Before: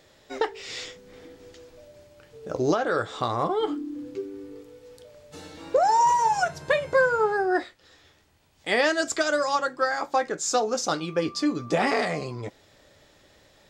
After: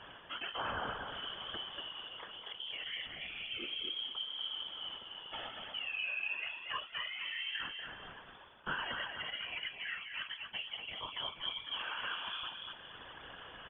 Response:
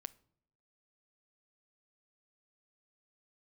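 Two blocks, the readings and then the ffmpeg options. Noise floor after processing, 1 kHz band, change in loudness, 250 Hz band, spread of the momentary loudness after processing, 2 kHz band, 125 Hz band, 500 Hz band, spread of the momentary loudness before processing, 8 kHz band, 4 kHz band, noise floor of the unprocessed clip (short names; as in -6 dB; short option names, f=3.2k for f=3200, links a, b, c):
-53 dBFS, -20.0 dB, -14.5 dB, -25.5 dB, 9 LU, -10.5 dB, -19.5 dB, -27.0 dB, 17 LU, under -40 dB, -0.5 dB, -59 dBFS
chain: -af "lowshelf=f=74:g=-8.5,bandreject=f=440:w=12,areverse,acompressor=threshold=-36dB:ratio=16,areverse,alimiter=level_in=13dB:limit=-24dB:level=0:latency=1:release=497,volume=-13dB,aexciter=amount=4.5:drive=4.6:freq=2k,lowpass=f=3k:t=q:w=0.5098,lowpass=f=3k:t=q:w=0.6013,lowpass=f=3k:t=q:w=0.9,lowpass=f=3k:t=q:w=2.563,afreqshift=-3500,aecho=1:1:239|478|717|956:0.562|0.169|0.0506|0.0152,afftfilt=real='hypot(re,im)*cos(2*PI*random(0))':imag='hypot(re,im)*sin(2*PI*random(1))':win_size=512:overlap=0.75,volume=9dB"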